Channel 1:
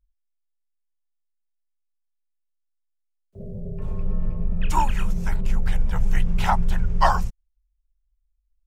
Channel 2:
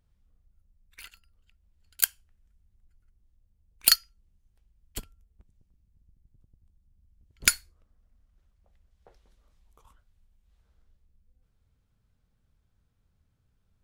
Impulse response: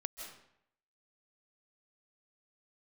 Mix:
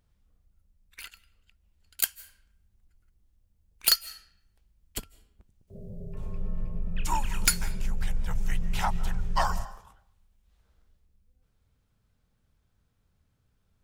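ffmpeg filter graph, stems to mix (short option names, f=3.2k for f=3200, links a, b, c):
-filter_complex "[0:a]highshelf=f=3.1k:g=10,adelay=2350,volume=-10dB,asplit=2[a][b];[b]volume=-8.5dB[c];[1:a]lowshelf=f=150:g=-4.5,volume=2.5dB,asplit=2[d][e];[e]volume=-17dB[f];[2:a]atrim=start_sample=2205[g];[c][f]amix=inputs=2:normalize=0[h];[h][g]afir=irnorm=-1:irlink=0[i];[a][d][i]amix=inputs=3:normalize=0,asoftclip=type=tanh:threshold=-13dB"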